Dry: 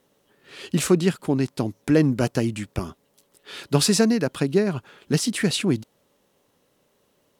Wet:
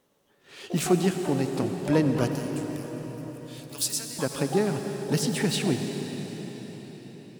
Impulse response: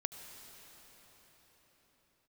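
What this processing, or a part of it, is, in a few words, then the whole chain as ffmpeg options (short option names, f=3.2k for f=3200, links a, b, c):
shimmer-style reverb: -filter_complex "[0:a]asettb=1/sr,asplit=3[a][b][c];[a]atrim=end=2.284[d];[b]atrim=start=2.28:end=4.19,asetpts=PTS-STARTPTS,afade=t=in:d=0.004:c=qsin,afade=t=out:st=1.906:d=0.004:c=qsin,aderivative[e];[c]atrim=start=4.186[f];[d][e]acrossfade=d=0.004:c1=hsin:c2=qsin[g];[g][f]acrossfade=d=0.004:c1=qsin:c2=hsin,asplit=2[h][i];[i]asetrate=88200,aresample=44100,atempo=0.5,volume=-11dB[j];[h][j]amix=inputs=2:normalize=0[k];[1:a]atrim=start_sample=2205[l];[k][l]afir=irnorm=-1:irlink=0,volume=-3dB"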